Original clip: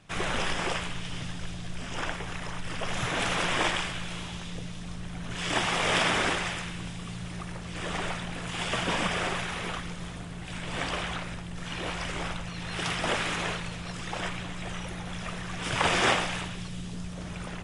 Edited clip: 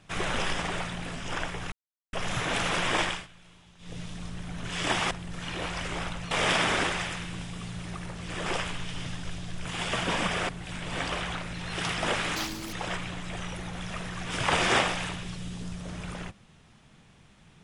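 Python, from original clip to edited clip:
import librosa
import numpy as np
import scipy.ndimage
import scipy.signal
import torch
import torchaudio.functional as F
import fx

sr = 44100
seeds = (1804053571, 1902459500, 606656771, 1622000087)

y = fx.edit(x, sr, fx.swap(start_s=0.62, length_s=1.19, other_s=7.92, other_length_s=0.53),
    fx.silence(start_s=2.38, length_s=0.41),
    fx.fade_down_up(start_s=3.72, length_s=0.94, db=-18.5, fade_s=0.22),
    fx.cut(start_s=9.29, length_s=1.01),
    fx.move(start_s=11.35, length_s=1.2, to_s=5.77),
    fx.speed_span(start_s=13.37, length_s=0.68, speed=1.85), tone=tone)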